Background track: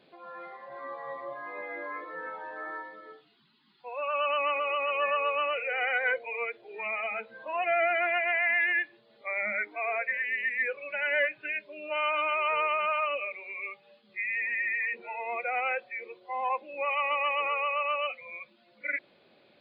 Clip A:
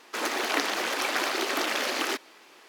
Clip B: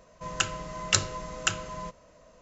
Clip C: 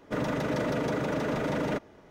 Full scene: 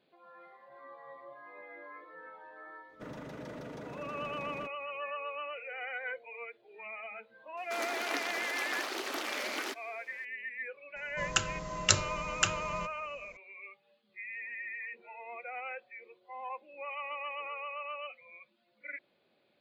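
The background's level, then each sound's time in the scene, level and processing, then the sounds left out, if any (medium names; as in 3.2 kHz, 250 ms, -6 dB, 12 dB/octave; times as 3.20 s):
background track -11 dB
2.89 s: add C -15 dB
7.57 s: add A -9 dB
10.96 s: add B -1.5 dB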